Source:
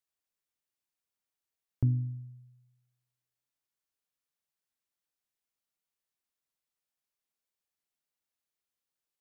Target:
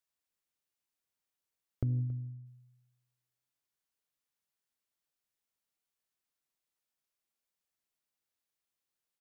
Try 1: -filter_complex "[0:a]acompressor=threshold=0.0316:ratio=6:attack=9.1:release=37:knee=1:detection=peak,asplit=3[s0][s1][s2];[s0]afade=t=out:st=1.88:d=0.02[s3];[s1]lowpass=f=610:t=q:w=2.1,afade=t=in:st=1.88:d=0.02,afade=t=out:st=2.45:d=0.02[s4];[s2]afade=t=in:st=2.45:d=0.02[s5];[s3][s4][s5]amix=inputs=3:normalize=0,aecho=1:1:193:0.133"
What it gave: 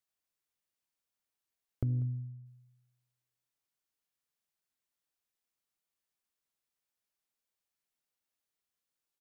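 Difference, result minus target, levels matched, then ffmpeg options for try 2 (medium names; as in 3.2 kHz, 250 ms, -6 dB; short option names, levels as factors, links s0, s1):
echo 82 ms early
-filter_complex "[0:a]acompressor=threshold=0.0316:ratio=6:attack=9.1:release=37:knee=1:detection=peak,asplit=3[s0][s1][s2];[s0]afade=t=out:st=1.88:d=0.02[s3];[s1]lowpass=f=610:t=q:w=2.1,afade=t=in:st=1.88:d=0.02,afade=t=out:st=2.45:d=0.02[s4];[s2]afade=t=in:st=2.45:d=0.02[s5];[s3][s4][s5]amix=inputs=3:normalize=0,aecho=1:1:275:0.133"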